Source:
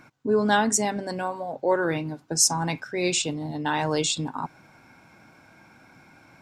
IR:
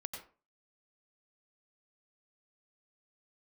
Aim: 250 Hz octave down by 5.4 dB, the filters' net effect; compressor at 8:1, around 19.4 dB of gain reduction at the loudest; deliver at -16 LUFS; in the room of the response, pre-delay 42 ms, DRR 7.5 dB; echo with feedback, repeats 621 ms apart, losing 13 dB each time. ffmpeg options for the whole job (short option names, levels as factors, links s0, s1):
-filter_complex "[0:a]equalizer=f=250:t=o:g=-8,acompressor=threshold=0.0141:ratio=8,aecho=1:1:621|1242|1863:0.224|0.0493|0.0108,asplit=2[s0][s1];[1:a]atrim=start_sample=2205,adelay=42[s2];[s1][s2]afir=irnorm=-1:irlink=0,volume=0.501[s3];[s0][s3]amix=inputs=2:normalize=0,volume=15.8"